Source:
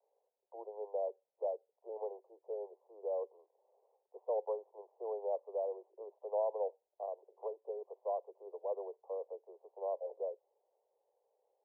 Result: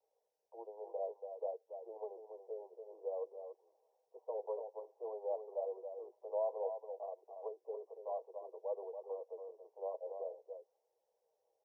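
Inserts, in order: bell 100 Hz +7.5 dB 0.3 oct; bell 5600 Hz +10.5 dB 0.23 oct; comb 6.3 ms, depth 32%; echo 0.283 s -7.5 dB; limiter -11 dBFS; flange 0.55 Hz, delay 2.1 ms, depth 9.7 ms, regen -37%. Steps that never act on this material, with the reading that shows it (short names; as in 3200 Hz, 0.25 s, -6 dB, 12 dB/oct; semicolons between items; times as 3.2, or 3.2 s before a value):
bell 100 Hz: input band starts at 320 Hz; bell 5600 Hz: input band ends at 1100 Hz; limiter -11 dBFS: input peak -23.5 dBFS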